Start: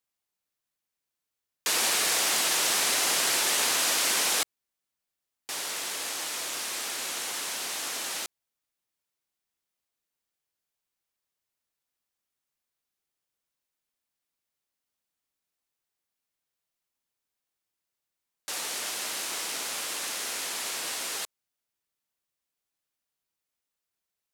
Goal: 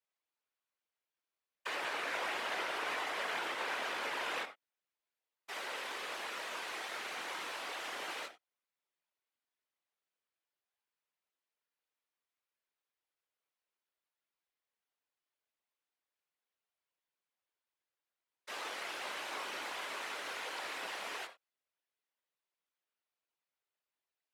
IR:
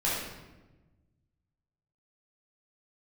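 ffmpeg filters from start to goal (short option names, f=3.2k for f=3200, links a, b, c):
-filter_complex "[0:a]acrossover=split=300 3900:gain=0.0891 1 0.224[a][b][c];[a][b][c]amix=inputs=3:normalize=0,acrossover=split=2700[d][e];[e]acompressor=threshold=-45dB:ratio=4:attack=1:release=60[f];[d][f]amix=inputs=2:normalize=0,asplit=2[g][h];[1:a]atrim=start_sample=2205,afade=t=out:st=0.29:d=0.01,atrim=end_sample=13230,atrim=end_sample=4410[i];[h][i]afir=irnorm=-1:irlink=0,volume=-15dB[j];[g][j]amix=inputs=2:normalize=0,alimiter=limit=-24dB:level=0:latency=1:release=180,flanger=delay=17.5:depth=5.5:speed=0.37,afftfilt=real='hypot(re,im)*cos(2*PI*random(0))':imag='hypot(re,im)*sin(2*PI*random(1))':win_size=512:overlap=0.75,volume=5dB"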